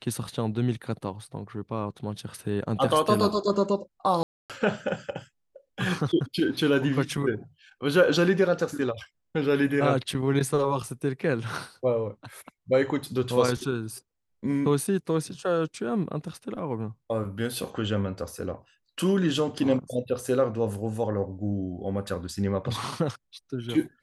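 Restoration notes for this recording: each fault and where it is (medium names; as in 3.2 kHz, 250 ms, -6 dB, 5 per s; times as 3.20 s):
4.23–4.50 s: dropout 267 ms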